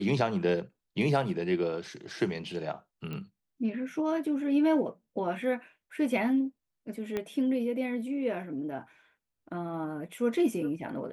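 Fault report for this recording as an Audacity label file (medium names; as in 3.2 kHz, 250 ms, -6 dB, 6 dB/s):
3.130000	3.130000	pop -26 dBFS
7.170000	7.170000	pop -19 dBFS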